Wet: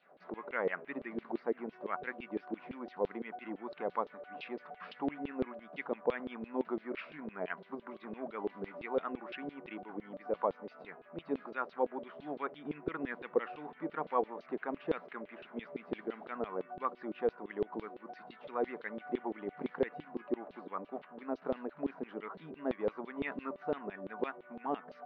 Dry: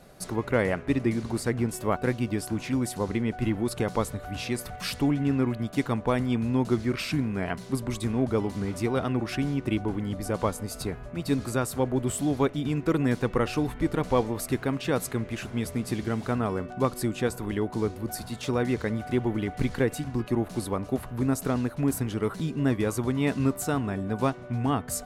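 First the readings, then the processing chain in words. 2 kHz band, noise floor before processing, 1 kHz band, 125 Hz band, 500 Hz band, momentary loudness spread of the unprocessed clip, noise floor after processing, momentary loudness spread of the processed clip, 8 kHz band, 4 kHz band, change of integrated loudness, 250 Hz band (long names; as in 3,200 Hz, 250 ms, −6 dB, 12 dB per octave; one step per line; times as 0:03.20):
−8.5 dB, −42 dBFS, −6.5 dB, −27.0 dB, −8.0 dB, 6 LU, −60 dBFS, 10 LU, below −40 dB, −18.0 dB, −11.5 dB, −14.5 dB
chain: brick-wall band-pass 140–6,400 Hz
auto-filter band-pass saw down 5.9 Hz 400–3,700 Hz
high-frequency loss of the air 460 metres
level +1.5 dB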